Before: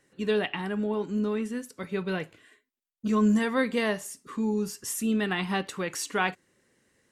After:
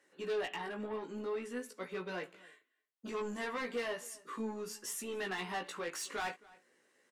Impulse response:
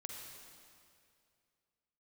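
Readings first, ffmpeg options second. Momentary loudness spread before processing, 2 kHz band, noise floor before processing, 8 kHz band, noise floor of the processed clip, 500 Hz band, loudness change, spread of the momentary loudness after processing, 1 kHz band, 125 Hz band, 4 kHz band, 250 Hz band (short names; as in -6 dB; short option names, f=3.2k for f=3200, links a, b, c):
10 LU, -9.0 dB, -83 dBFS, -8.0 dB, -81 dBFS, -8.5 dB, -11.0 dB, 6 LU, -8.0 dB, -18.0 dB, -8.5 dB, -17.5 dB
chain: -filter_complex "[0:a]highpass=390,highshelf=f=3.8k:g=-5.5,asplit=2[a][b];[b]acompressor=threshold=-39dB:ratio=6,volume=-3dB[c];[a][c]amix=inputs=2:normalize=0,asoftclip=type=tanh:threshold=-27.5dB,flanger=delay=16:depth=2.1:speed=0.58,asplit=2[d][e];[e]adelay=268.2,volume=-22dB,highshelf=f=4k:g=-6.04[f];[d][f]amix=inputs=2:normalize=0,volume=-2dB"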